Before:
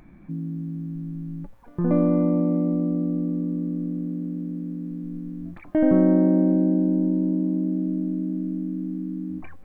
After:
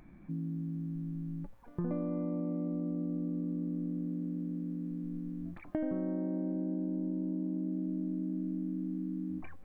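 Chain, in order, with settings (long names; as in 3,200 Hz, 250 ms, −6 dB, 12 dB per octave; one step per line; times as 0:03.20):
downward compressor 10 to 1, threshold −25 dBFS, peak gain reduction 12 dB
level −6 dB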